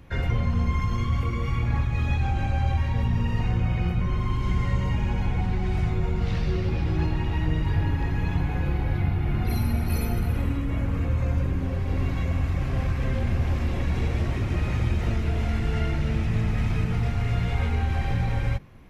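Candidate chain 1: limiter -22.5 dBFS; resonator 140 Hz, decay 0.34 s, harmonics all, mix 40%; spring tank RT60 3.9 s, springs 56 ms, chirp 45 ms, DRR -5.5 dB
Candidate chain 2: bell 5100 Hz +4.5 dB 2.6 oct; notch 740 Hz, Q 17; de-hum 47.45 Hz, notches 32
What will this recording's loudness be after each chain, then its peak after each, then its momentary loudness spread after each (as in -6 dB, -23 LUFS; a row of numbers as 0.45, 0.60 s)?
-30.0, -26.5 LUFS; -15.0, -12.5 dBFS; 4, 2 LU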